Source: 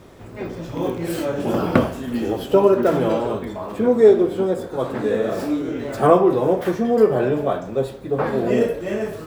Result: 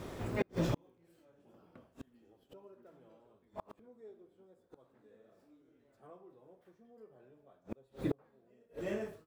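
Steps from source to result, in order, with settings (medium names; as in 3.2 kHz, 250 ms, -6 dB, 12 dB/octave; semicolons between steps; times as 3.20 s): fade out at the end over 1.47 s; inverted gate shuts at -20 dBFS, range -42 dB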